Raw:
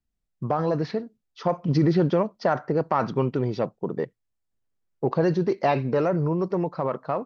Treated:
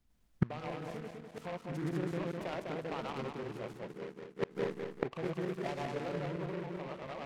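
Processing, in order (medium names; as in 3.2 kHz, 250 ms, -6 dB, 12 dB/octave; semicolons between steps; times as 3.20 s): backward echo that repeats 101 ms, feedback 69%, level 0 dB; inverted gate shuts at -24 dBFS, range -27 dB; delay time shaken by noise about 1.3 kHz, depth 0.088 ms; trim +7.5 dB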